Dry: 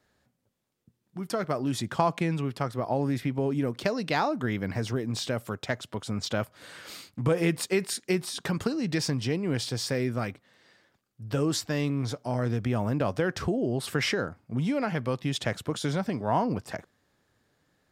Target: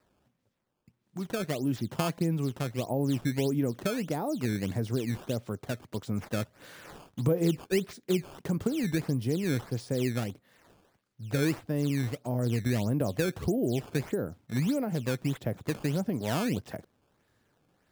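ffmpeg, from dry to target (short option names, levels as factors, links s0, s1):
-filter_complex "[0:a]acrossover=split=650[s0][s1];[s1]acompressor=threshold=0.00447:ratio=5[s2];[s0][s2]amix=inputs=2:normalize=0,acrusher=samples=13:mix=1:aa=0.000001:lfo=1:lforange=20.8:lforate=1.6"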